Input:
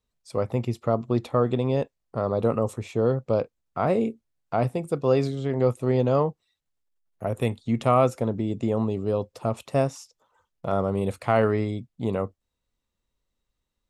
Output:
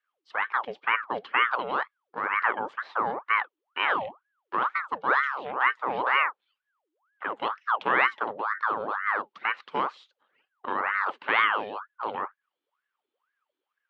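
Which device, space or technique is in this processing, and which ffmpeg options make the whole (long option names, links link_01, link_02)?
voice changer toy: -af "aeval=exprs='val(0)*sin(2*PI*1000*n/s+1000*0.7/2.1*sin(2*PI*2.1*n/s))':channel_layout=same,highpass=450,equalizer=frequency=670:width_type=q:width=4:gain=-6,equalizer=frequency=1200:width_type=q:width=4:gain=4,equalizer=frequency=3100:width_type=q:width=4:gain=5,lowpass=frequency=3700:width=0.5412,lowpass=frequency=3700:width=1.3066"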